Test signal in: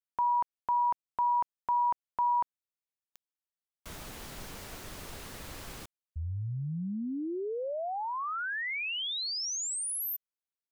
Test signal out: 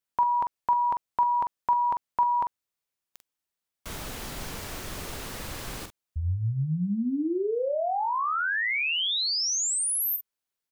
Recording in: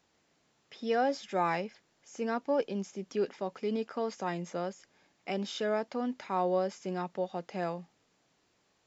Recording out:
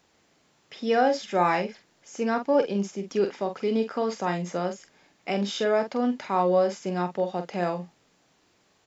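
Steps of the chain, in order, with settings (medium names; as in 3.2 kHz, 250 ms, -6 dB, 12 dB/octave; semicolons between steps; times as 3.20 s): doubling 45 ms -8 dB; trim +6.5 dB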